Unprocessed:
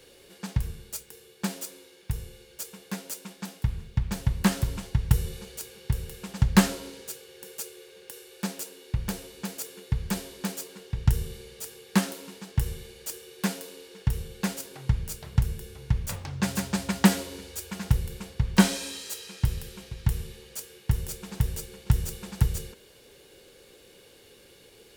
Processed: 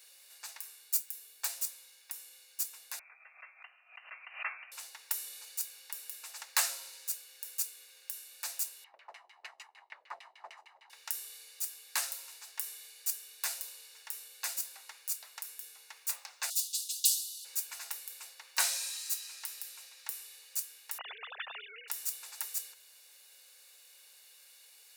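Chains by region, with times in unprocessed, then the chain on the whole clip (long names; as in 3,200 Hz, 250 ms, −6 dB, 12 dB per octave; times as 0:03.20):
0:00.93–0:01.48: high-pass with resonance 220 Hz, resonance Q 2.7 + high-shelf EQ 12,000 Hz +7 dB
0:02.99–0:04.72: high-pass filter 600 Hz + voice inversion scrambler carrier 2,900 Hz + background raised ahead of every attack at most 140 dB per second
0:08.84–0:10.90: lower of the sound and its delayed copy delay 0.99 ms + auto-filter low-pass saw down 6.6 Hz 380–2,900 Hz
0:16.50–0:17.45: Butterworth high-pass 3,000 Hz 72 dB per octave + comb filter 5 ms, depth 94%
0:20.98–0:21.88: three sine waves on the formant tracks + high-pass filter 420 Hz
whole clip: high-pass filter 680 Hz 24 dB per octave; spectral tilt +3.5 dB per octave; notch filter 3,200 Hz, Q 7.1; level −9 dB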